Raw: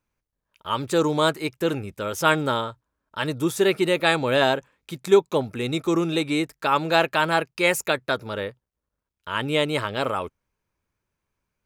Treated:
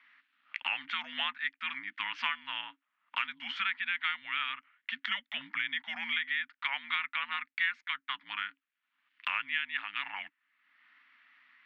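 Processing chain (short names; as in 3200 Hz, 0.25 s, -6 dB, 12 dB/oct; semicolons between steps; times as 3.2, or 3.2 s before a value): elliptic band-stop 120–2000 Hz, stop band 50 dB; mistuned SSB -400 Hz 270–3500 Hz; three-band squash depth 100%; gain -1.5 dB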